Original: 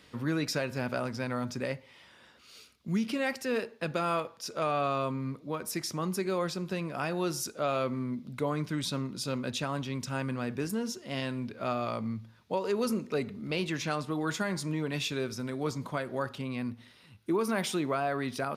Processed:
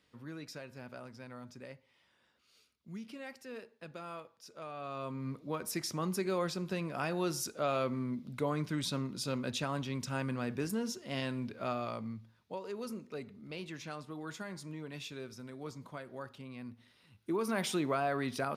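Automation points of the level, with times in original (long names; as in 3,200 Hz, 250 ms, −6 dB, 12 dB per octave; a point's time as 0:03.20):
0:04.75 −15 dB
0:05.34 −2.5 dB
0:11.49 −2.5 dB
0:12.70 −11.5 dB
0:16.58 −11.5 dB
0:17.72 −2 dB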